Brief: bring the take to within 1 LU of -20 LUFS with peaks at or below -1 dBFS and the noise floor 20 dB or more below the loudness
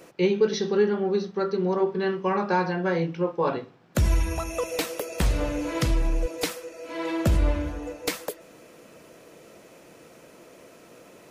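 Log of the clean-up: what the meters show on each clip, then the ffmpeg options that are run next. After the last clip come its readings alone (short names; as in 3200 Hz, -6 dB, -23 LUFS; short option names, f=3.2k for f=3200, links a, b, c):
loudness -26.5 LUFS; peak -11.5 dBFS; loudness target -20.0 LUFS
-> -af "volume=6.5dB"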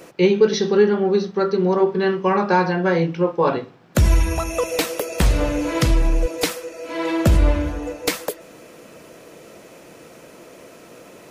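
loudness -20.0 LUFS; peak -5.0 dBFS; noise floor -45 dBFS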